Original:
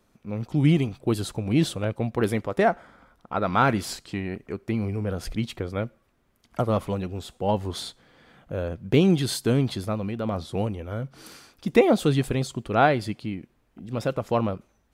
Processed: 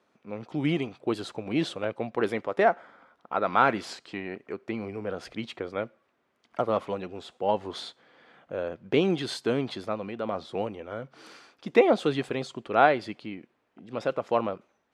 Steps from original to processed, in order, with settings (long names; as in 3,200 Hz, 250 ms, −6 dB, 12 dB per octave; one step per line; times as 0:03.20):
band-pass filter 120–7,000 Hz
bass and treble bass −12 dB, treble −7 dB